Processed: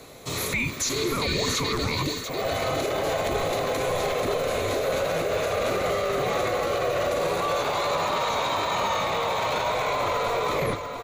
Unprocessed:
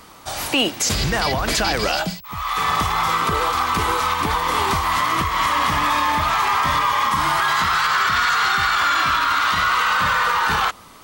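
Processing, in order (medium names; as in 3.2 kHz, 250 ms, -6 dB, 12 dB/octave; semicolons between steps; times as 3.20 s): tape stop on the ending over 0.49 s; harmony voices -12 st -18 dB; rippled EQ curve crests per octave 1.4, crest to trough 9 dB; peak limiter -16 dBFS, peak gain reduction 9.5 dB; frequency shift -490 Hz; spectral replace 1.28–1.49 s, 1.6–8.7 kHz both; on a send: delay 691 ms -8 dB; on the sum: trim -2 dB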